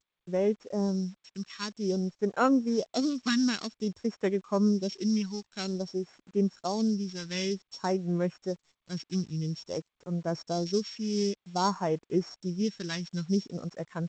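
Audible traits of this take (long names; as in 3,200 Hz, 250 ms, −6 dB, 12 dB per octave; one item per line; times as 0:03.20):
a buzz of ramps at a fixed pitch in blocks of 8 samples
phaser sweep stages 2, 0.52 Hz, lowest notch 570–4,400 Hz
a quantiser's noise floor 10 bits, dither none
G.722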